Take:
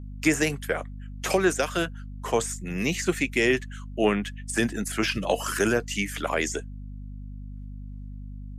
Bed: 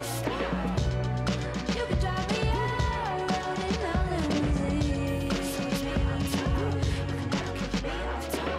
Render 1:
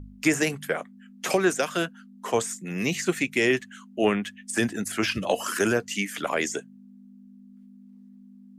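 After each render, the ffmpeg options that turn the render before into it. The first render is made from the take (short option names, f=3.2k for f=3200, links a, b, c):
-af "bandreject=f=50:t=h:w=4,bandreject=f=100:t=h:w=4,bandreject=f=150:t=h:w=4"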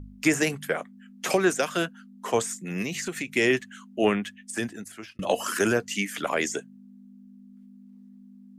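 -filter_complex "[0:a]asettb=1/sr,asplit=3[a][b][c];[a]atrim=end=2.824[d];[b]atrim=start=2.82:end=3.36,asetpts=PTS-STARTPTS,afade=t=in:d=0.004:c=qsin,afade=t=out:st=0.536:d=0.004:c=qsin,acompressor=threshold=-27dB:ratio=6:attack=3.2:release=140:knee=1:detection=peak[e];[c]atrim=start=3.356[f];[d][e]acrossfade=d=0.004:c1=hsin:c2=qsin[g];[g][f]acrossfade=d=0.004:c1=qsin:c2=hsin,asplit=2[h][i];[h]atrim=end=5.19,asetpts=PTS-STARTPTS,afade=t=out:st=4.11:d=1.08[j];[i]atrim=start=5.19,asetpts=PTS-STARTPTS,afade=t=in:d=0.004:c=hsin[k];[j][k]concat=n=2:v=0:a=1"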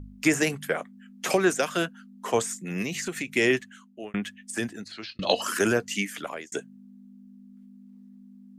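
-filter_complex "[0:a]asettb=1/sr,asplit=3[a][b][c];[a]atrim=end=4.844[d];[b]atrim=start=4.84:end=5.42,asetpts=PTS-STARTPTS,afade=t=in:d=0.004:c=qsin,afade=t=out:st=0.576:d=0.004:c=qsin,lowpass=f=4.2k:t=q:w=15[e];[c]atrim=start=5.416[f];[d][e]acrossfade=d=0.004:c1=hsin:c2=qsin[g];[g][f]acrossfade=d=0.004:c1=qsin:c2=hsin,asplit=3[h][i][j];[h]atrim=end=4.14,asetpts=PTS-STARTPTS,afade=t=out:st=3.5:d=0.64[k];[i]atrim=start=4.14:end=6.52,asetpts=PTS-STARTPTS,afade=t=in:d=0.004:c=hsin,afade=t=out:st=1.85:d=0.53[l];[j]atrim=start=6.52,asetpts=PTS-STARTPTS,afade=t=in:d=0.004:c=hsin[m];[k][l][m]concat=n=3:v=0:a=1"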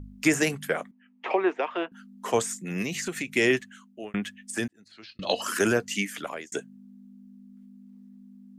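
-filter_complex "[0:a]asettb=1/sr,asplit=3[a][b][c];[a]atrim=end=0.914[d];[b]atrim=start=0.91:end=1.92,asetpts=PTS-STARTPTS,afade=t=in:d=0.004:c=qsin,afade=t=out:st=1.006:d=0.004:c=qsin,highpass=f=320:w=0.5412,highpass=f=320:w=1.3066,equalizer=f=540:t=q:w=4:g=-4,equalizer=f=910:t=q:w=4:g=7,equalizer=f=1.5k:t=q:w=4:g=-9,lowpass=f=2.6k:w=0.5412,lowpass=f=2.6k:w=1.3066[e];[c]atrim=start=1.916[f];[d][e]acrossfade=d=0.004:c1=hsin:c2=qsin[g];[g][f]acrossfade=d=0.004:c1=qsin:c2=hsin,asplit=2[h][i];[h]atrim=end=4.68,asetpts=PTS-STARTPTS,afade=t=out:st=4.676:d=0.004:c=hsin[j];[i]atrim=start=4.68,asetpts=PTS-STARTPTS,afade=t=in:d=0.91[k];[j][k]concat=n=2:v=0:a=1"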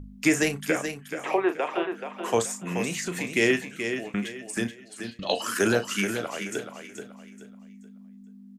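-filter_complex "[0:a]asplit=2[a][b];[b]adelay=35,volume=-11dB[c];[a][c]amix=inputs=2:normalize=0,aecho=1:1:429|858|1287|1716:0.398|0.123|0.0383|0.0119"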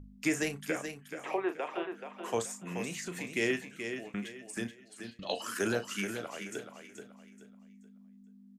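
-af "volume=-8.5dB"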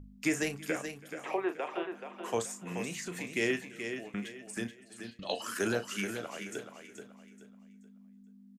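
-af "aecho=1:1:329:0.075"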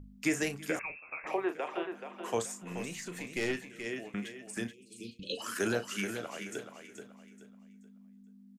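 -filter_complex "[0:a]asettb=1/sr,asplit=3[a][b][c];[a]atrim=end=0.794[d];[b]atrim=start=0.79:end=1.27,asetpts=PTS-STARTPTS,afade=t=in:d=0.004:c=qsin,afade=t=out:st=0.476:d=0.004:c=qsin,lowpass=f=2.4k:t=q:w=0.5098,lowpass=f=2.4k:t=q:w=0.6013,lowpass=f=2.4k:t=q:w=0.9,lowpass=f=2.4k:t=q:w=2.563,afreqshift=-2800[e];[c]atrim=start=1.266[f];[d][e]acrossfade=d=0.004:c1=hsin:c2=qsin[g];[g][f]acrossfade=d=0.004:c1=qsin:c2=hsin,asettb=1/sr,asplit=3[h][i][j];[h]atrim=end=2.624[k];[i]atrim=start=2.62:end=3.86,asetpts=PTS-STARTPTS,afade=t=in:d=0.004:c=qsin,afade=t=out:st=1.236:d=0.004:c=qsin,aeval=exprs='(tanh(15.8*val(0)+0.5)-tanh(0.5))/15.8':c=same[l];[j]atrim=start=3.856[m];[k][l]acrossfade=d=0.004:c1=hsin:c2=qsin[n];[n][m]acrossfade=d=0.004:c1=qsin:c2=hsin,asplit=3[o][p][q];[o]afade=t=out:st=4.72:d=0.02[r];[p]asuperstop=centerf=1100:order=20:qfactor=0.62,afade=t=in:st=4.72:d=0.02,afade=t=out:st=5.37:d=0.02[s];[q]afade=t=in:st=5.37:d=0.02[t];[r][s][t]amix=inputs=3:normalize=0"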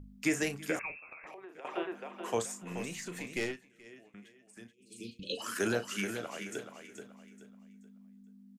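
-filter_complex "[0:a]asettb=1/sr,asplit=3[a][b][c];[a]atrim=end=1.084[d];[b]atrim=start=1.08:end=1.65,asetpts=PTS-STARTPTS,afade=t=in:d=0.004:c=qsin,afade=t=out:st=0.566:d=0.004:c=qsin,acompressor=threshold=-45dB:ratio=12:attack=3.2:release=140:knee=1:detection=peak[e];[c]atrim=start=1.646[f];[d][e]acrossfade=d=0.004:c1=hsin:c2=qsin[g];[g][f]acrossfade=d=0.004:c1=qsin:c2=hsin,asplit=3[h][i][j];[h]atrim=end=3.57,asetpts=PTS-STARTPTS,afade=t=out:st=3.41:d=0.16:silence=0.177828[k];[i]atrim=start=3.57:end=4.76,asetpts=PTS-STARTPTS,volume=-15dB[l];[j]atrim=start=4.76,asetpts=PTS-STARTPTS,afade=t=in:d=0.16:silence=0.177828[m];[k][l][m]concat=n=3:v=0:a=1"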